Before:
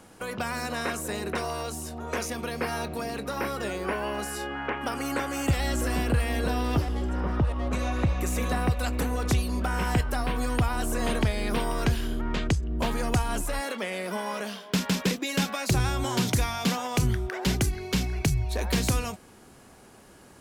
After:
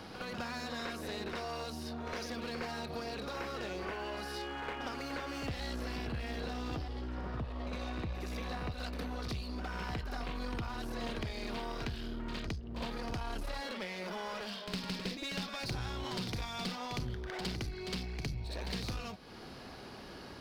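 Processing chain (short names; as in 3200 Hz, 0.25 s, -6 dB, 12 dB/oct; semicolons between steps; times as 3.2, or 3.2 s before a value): resonant high shelf 6000 Hz -9.5 dB, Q 3; compressor 2.5:1, threshold -45 dBFS, peak gain reduction 17 dB; one-sided clip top -43.5 dBFS; reverse echo 60 ms -6.5 dB; gain +3 dB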